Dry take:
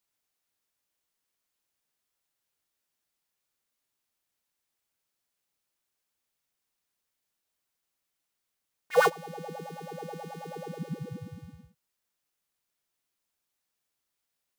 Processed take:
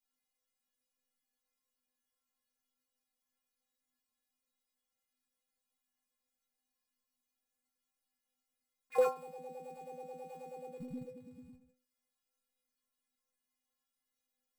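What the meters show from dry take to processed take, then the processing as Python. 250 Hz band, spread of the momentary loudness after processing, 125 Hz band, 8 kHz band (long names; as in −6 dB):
−8.0 dB, 20 LU, −17.0 dB, −13.0 dB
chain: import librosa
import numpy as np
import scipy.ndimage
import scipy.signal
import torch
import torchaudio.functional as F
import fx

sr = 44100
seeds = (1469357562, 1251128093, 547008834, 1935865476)

y = fx.low_shelf(x, sr, hz=310.0, db=9.0)
y = fx.level_steps(y, sr, step_db=14)
y = fx.stiff_resonator(y, sr, f0_hz=250.0, decay_s=0.43, stiffness=0.008)
y = y * librosa.db_to_amplitude(9.5)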